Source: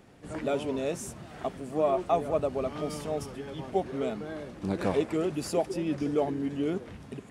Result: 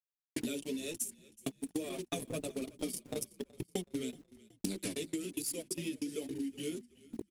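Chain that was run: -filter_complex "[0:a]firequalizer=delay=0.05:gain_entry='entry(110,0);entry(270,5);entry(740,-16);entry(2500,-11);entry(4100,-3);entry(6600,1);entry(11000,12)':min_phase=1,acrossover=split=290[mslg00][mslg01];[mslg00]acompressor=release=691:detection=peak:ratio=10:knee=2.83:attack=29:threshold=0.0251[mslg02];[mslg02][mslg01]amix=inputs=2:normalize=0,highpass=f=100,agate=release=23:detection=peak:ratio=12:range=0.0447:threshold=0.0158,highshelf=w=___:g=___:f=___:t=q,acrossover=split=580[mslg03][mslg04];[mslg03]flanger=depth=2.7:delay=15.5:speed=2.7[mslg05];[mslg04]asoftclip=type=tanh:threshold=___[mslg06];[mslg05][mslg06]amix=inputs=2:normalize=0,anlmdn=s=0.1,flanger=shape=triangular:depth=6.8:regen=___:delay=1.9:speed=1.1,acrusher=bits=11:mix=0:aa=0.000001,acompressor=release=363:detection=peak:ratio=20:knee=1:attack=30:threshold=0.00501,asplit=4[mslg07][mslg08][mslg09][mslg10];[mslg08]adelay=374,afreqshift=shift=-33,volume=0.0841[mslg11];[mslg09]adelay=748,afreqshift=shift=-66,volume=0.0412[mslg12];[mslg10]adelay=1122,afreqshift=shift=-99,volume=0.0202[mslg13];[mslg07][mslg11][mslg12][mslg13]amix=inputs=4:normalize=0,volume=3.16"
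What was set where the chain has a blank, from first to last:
1.5, 12.5, 1600, 0.0944, -13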